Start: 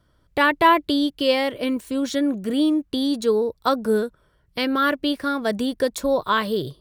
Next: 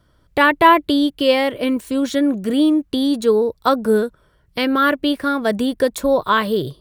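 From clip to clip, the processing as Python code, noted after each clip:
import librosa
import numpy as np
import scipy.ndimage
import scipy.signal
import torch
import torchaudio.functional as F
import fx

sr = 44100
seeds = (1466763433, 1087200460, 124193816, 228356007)

y = fx.dynamic_eq(x, sr, hz=5300.0, q=1.3, threshold_db=-44.0, ratio=4.0, max_db=-5)
y = y * 10.0 ** (4.5 / 20.0)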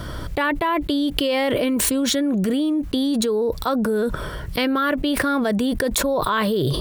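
y = fx.env_flatten(x, sr, amount_pct=100)
y = y * 10.0 ** (-12.5 / 20.0)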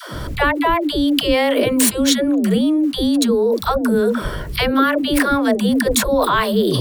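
y = fx.dispersion(x, sr, late='lows', ms=147.0, hz=320.0)
y = y * 10.0 ** (4.5 / 20.0)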